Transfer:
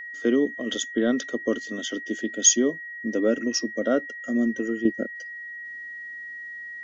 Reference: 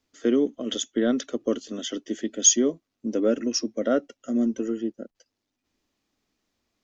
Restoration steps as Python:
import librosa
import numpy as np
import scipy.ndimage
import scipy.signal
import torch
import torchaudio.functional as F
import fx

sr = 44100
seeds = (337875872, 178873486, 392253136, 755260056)

y = fx.notch(x, sr, hz=1900.0, q=30.0)
y = fx.gain(y, sr, db=fx.steps((0.0, 0.0), (4.85, -8.5)))